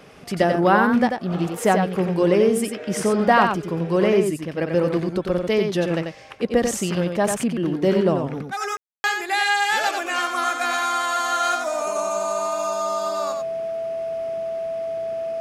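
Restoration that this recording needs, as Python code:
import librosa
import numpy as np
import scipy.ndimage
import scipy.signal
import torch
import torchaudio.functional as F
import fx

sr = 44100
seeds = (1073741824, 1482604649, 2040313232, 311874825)

y = fx.notch(x, sr, hz=660.0, q=30.0)
y = fx.fix_ambience(y, sr, seeds[0], print_start_s=6.02, print_end_s=6.52, start_s=8.77, end_s=9.04)
y = fx.fix_echo_inverse(y, sr, delay_ms=91, level_db=-5.5)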